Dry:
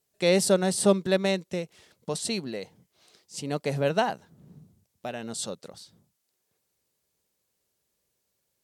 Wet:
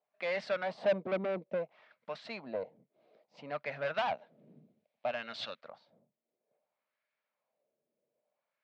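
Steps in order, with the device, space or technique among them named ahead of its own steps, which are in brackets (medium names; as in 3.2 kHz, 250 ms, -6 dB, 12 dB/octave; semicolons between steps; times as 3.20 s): 3.94–5.61 s: frequency weighting D; wah-wah guitar rig (wah-wah 0.6 Hz 370–1600 Hz, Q 2.1; valve stage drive 35 dB, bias 0.4; cabinet simulation 110–4500 Hz, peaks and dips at 140 Hz +5 dB, 230 Hz +6 dB, 380 Hz -7 dB, 620 Hz +10 dB, 2.3 kHz +7 dB); trim +3.5 dB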